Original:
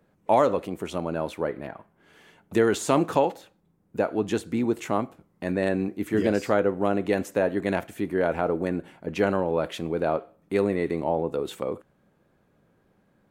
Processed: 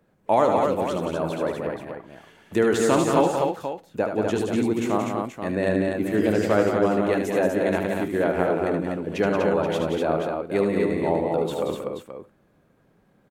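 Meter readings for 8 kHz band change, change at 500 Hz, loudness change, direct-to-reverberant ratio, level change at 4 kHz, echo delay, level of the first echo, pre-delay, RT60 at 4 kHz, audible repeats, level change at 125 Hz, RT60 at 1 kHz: +3.0 dB, +3.0 dB, +2.5 dB, no reverb audible, +3.0 dB, 75 ms, −6.5 dB, no reverb audible, no reverb audible, 4, +3.0 dB, no reverb audible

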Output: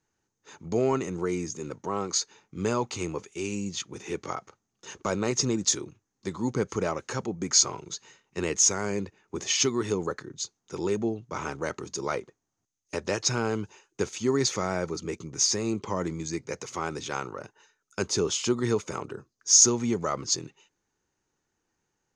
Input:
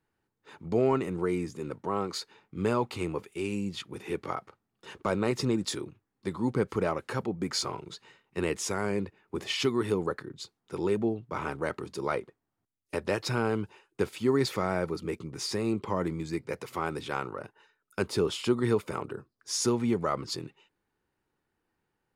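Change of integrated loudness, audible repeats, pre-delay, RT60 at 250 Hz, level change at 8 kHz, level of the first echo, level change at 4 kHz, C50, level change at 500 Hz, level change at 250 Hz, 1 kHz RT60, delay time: +3.5 dB, no echo audible, no reverb audible, no reverb audible, +15.5 dB, no echo audible, +6.0 dB, no reverb audible, 0.0 dB, 0.0 dB, no reverb audible, no echo audible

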